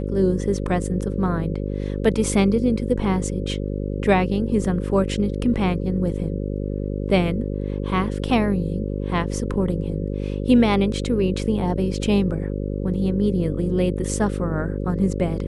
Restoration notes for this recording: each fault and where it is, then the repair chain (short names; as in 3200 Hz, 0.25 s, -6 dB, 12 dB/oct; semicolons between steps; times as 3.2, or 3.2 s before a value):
buzz 50 Hz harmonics 11 -26 dBFS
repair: de-hum 50 Hz, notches 11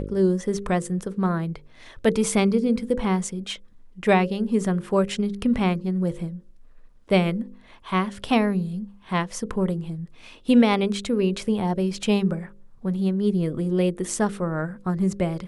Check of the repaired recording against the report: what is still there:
none